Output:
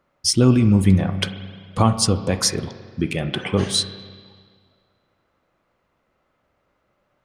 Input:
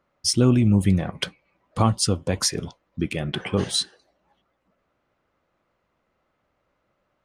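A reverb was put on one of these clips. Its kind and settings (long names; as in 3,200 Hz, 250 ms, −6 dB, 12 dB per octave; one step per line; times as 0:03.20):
spring reverb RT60 1.8 s, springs 31/43 ms, chirp 40 ms, DRR 10 dB
level +3 dB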